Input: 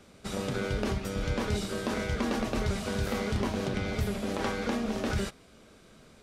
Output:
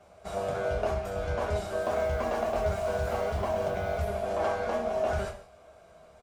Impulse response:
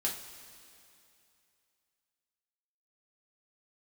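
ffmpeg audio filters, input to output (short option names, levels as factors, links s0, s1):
-filter_complex "[0:a]asettb=1/sr,asplit=3[s0][s1][s2];[s0]atrim=end=1.814[s3];[s1]atrim=start=1.81:end=3.98,asetpts=PTS-STARTPTS,afade=t=in:d=0.004:c=qsin,afade=t=out:st=2.166:d=0.004:c=qsin,acrusher=bits=9:dc=4:mix=0:aa=0.000001[s4];[s2]atrim=start=3.976[s5];[s3][s4]acrossfade=d=0.004:c1=hsin:c2=qsin[s6];[s6][s5]acrossfade=d=0.004:c1=qsin:c2=hsin,firequalizer=gain_entry='entry(110,0);entry(270,-11);entry(640,11);entry(1300,1);entry(3600,-7);entry(8100,-5)':delay=0.05:min_phase=1[s7];[1:a]atrim=start_sample=2205,afade=t=out:st=0.4:d=0.01,atrim=end_sample=18081,asetrate=79380,aresample=44100[s8];[s7][s8]afir=irnorm=-1:irlink=0"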